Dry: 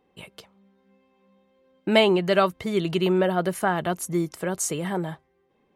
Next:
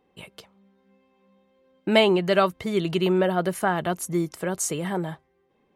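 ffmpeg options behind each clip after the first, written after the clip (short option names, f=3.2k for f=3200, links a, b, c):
-af anull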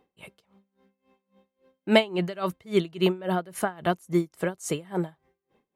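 -af "aeval=exprs='val(0)*pow(10,-24*(0.5-0.5*cos(2*PI*3.6*n/s))/20)':c=same,volume=2.5dB"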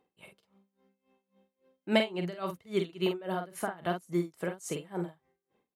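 -filter_complex "[0:a]lowshelf=f=61:g=-9.5,asplit=2[a][b];[b]adelay=46,volume=-6dB[c];[a][c]amix=inputs=2:normalize=0,volume=-7dB"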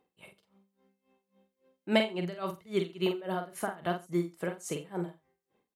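-af "aecho=1:1:87:0.0944"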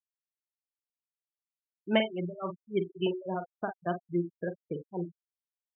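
-af "aresample=8000,aresample=44100,afftfilt=real='re*gte(hypot(re,im),0.0398)':imag='im*gte(hypot(re,im),0.0398)':win_size=1024:overlap=0.75"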